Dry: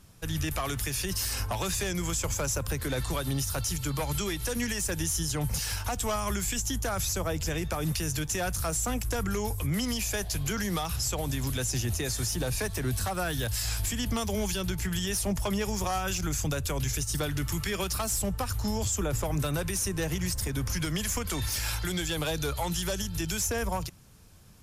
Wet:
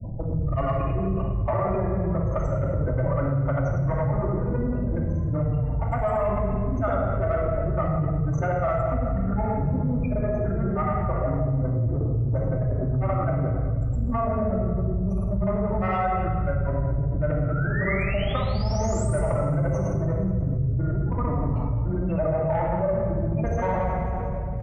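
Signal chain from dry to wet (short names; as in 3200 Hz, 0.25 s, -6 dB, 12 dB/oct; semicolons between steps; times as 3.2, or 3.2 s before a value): median filter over 25 samples; spectral gate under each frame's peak -20 dB strong; low shelf 330 Hz -4 dB; de-hum 208.7 Hz, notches 3; added harmonics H 2 -17 dB, 5 -25 dB, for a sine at -23 dBFS; grains, pitch spread up and down by 0 st; painted sound rise, 17.5–19.19, 1300–9500 Hz -46 dBFS; thirty-one-band EQ 125 Hz +8 dB, 315 Hz -7 dB, 630 Hz +9 dB, 1250 Hz +9 dB, 2000 Hz +12 dB, 4000 Hz -11 dB; on a send: feedback echo 0.18 s, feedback 52%, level -19 dB; on the sum: shoebox room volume 2200 m³, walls mixed, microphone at 2.6 m; fast leveller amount 70%; gain -2.5 dB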